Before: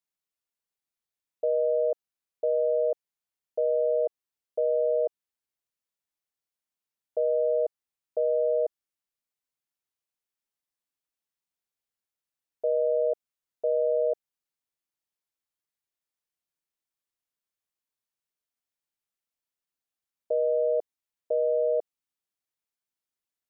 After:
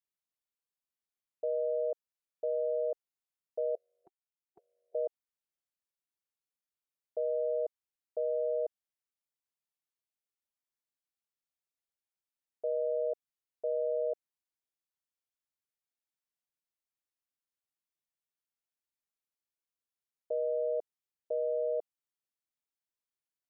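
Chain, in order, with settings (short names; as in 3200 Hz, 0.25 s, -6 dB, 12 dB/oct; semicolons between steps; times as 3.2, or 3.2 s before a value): 3.75–4.95 spectral gate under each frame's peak -20 dB weak; gain -7 dB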